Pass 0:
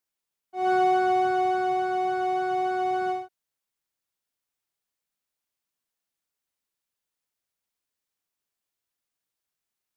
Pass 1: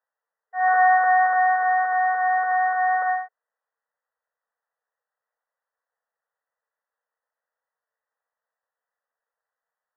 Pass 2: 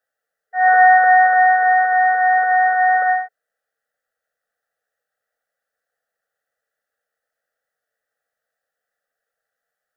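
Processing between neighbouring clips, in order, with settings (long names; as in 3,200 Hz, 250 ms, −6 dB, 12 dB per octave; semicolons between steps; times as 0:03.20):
each half-wave held at its own peak; brick-wall band-pass 440–2,000 Hz; level +3.5 dB
Butterworth band-reject 1,000 Hz, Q 1.9; level +8 dB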